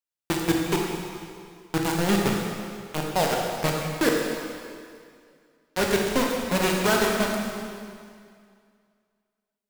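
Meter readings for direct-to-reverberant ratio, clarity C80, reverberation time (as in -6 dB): -1.0 dB, 2.0 dB, 2.2 s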